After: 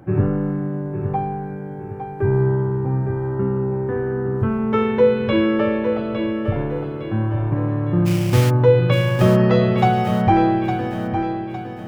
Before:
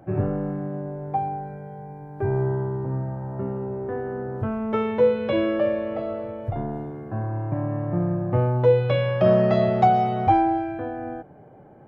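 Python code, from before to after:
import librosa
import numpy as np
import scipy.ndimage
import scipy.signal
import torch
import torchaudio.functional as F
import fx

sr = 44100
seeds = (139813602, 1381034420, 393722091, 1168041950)

p1 = fx.peak_eq(x, sr, hz=660.0, db=-12.0, octaves=0.49)
p2 = fx.sample_hold(p1, sr, seeds[0], rate_hz=2700.0, jitter_pct=20, at=(8.05, 8.49), fade=0.02)
p3 = p2 + fx.echo_feedback(p2, sr, ms=859, feedback_pct=41, wet_db=-8, dry=0)
y = p3 * 10.0 ** (6.5 / 20.0)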